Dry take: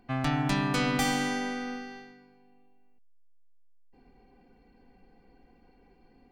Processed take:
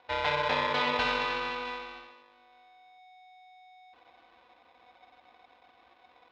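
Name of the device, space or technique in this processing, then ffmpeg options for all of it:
ring modulator pedal into a guitar cabinet: -af "aeval=exprs='val(0)*sgn(sin(2*PI*740*n/s))':c=same,highpass=83,equalizer=f=210:t=q:w=4:g=-6,equalizer=f=410:t=q:w=4:g=-8,equalizer=f=3800:t=q:w=4:g=3,lowpass=f=3900:w=0.5412,lowpass=f=3900:w=1.3066"

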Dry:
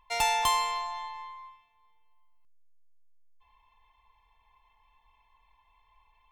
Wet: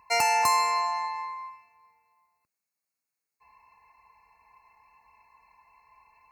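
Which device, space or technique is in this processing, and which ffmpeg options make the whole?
PA system with an anti-feedback notch: -af "highpass=110,asuperstop=centerf=3300:order=20:qfactor=3,alimiter=limit=0.0944:level=0:latency=1:release=383,volume=2.37"

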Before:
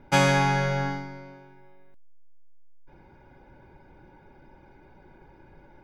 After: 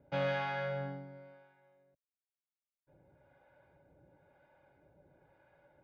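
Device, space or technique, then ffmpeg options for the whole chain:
guitar amplifier with harmonic tremolo: -filter_complex "[0:a]acrossover=split=610[s0][s1];[s0]aeval=exprs='val(0)*(1-0.7/2+0.7/2*cos(2*PI*1*n/s))':c=same[s2];[s1]aeval=exprs='val(0)*(1-0.7/2-0.7/2*cos(2*PI*1*n/s))':c=same[s3];[s2][s3]amix=inputs=2:normalize=0,asoftclip=type=tanh:threshold=0.1,highpass=90,equalizer=f=220:t=q:w=4:g=-10,equalizer=f=370:t=q:w=4:g=-8,equalizer=f=590:t=q:w=4:g=9,equalizer=f=930:t=q:w=4:g=-6,equalizer=f=2300:t=q:w=4:g=-4,lowpass=f=3600:w=0.5412,lowpass=f=3600:w=1.3066,volume=0.422"

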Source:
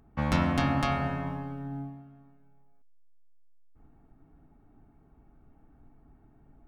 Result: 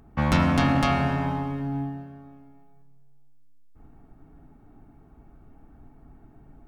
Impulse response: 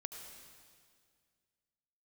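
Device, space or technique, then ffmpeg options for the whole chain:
saturated reverb return: -filter_complex "[0:a]asplit=2[s0][s1];[1:a]atrim=start_sample=2205[s2];[s1][s2]afir=irnorm=-1:irlink=0,asoftclip=type=tanh:threshold=0.0316,volume=1.26[s3];[s0][s3]amix=inputs=2:normalize=0,volume=1.26"

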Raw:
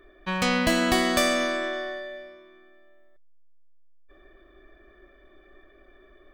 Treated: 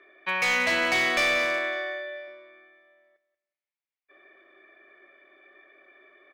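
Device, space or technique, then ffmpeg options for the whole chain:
megaphone: -filter_complex "[0:a]highpass=460,lowpass=4000,equalizer=f=2200:t=o:w=0.43:g=11.5,asoftclip=type=hard:threshold=0.106,asettb=1/sr,asplit=3[s0][s1][s2];[s0]atrim=end=1.584[s3];[s1]atrim=start=1.58:end=2.28,asetpts=PTS-STARTPTS,afade=t=in:d=0.004:c=qsin,afade=t=out:st=0.696:d=0.004:c=qsin,highpass=330[s4];[s2]atrim=start=2.276[s5];[s3][s4]acrossfade=d=0.004:c1=hsin:c2=qsin[s6];[s6][s5]acrossfade=d=0.004:c1=qsin:c2=hsin,aecho=1:1:184|368|552:0.178|0.0445|0.0111"

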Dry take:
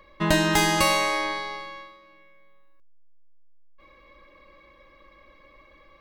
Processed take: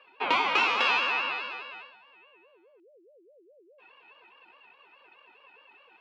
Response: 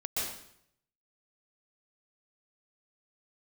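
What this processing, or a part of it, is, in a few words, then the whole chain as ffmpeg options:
voice changer toy: -af "aeval=exprs='val(0)*sin(2*PI*470*n/s+470*0.3/4.8*sin(2*PI*4.8*n/s))':c=same,highpass=570,equalizer=f=650:t=q:w=4:g=-9,equalizer=f=1000:t=q:w=4:g=6,equalizer=f=1700:t=q:w=4:g=-8,equalizer=f=2600:t=q:w=4:g=9,equalizer=f=3900:t=q:w=4:g=-3,lowpass=f=4000:w=0.5412,lowpass=f=4000:w=1.3066"

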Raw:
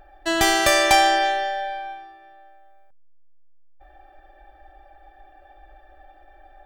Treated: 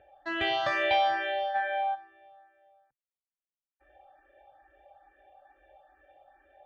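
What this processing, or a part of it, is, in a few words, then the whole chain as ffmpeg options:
barber-pole phaser into a guitar amplifier: -filter_complex "[0:a]asplit=3[s0][s1][s2];[s0]afade=t=out:st=1.54:d=0.02[s3];[s1]equalizer=f=1100:w=0.5:g=12.5,afade=t=in:st=1.54:d=0.02,afade=t=out:st=1.94:d=0.02[s4];[s2]afade=t=in:st=1.94:d=0.02[s5];[s3][s4][s5]amix=inputs=3:normalize=0,asplit=2[s6][s7];[s7]afreqshift=2.3[s8];[s6][s8]amix=inputs=2:normalize=1,asoftclip=type=tanh:threshold=0.224,highpass=91,equalizer=f=130:t=q:w=4:g=7,equalizer=f=190:t=q:w=4:g=-8,equalizer=f=350:t=q:w=4:g=-5,equalizer=f=520:t=q:w=4:g=9,equalizer=f=2900:t=q:w=4:g=4,lowpass=f=3500:w=0.5412,lowpass=f=3500:w=1.3066,volume=0.501"

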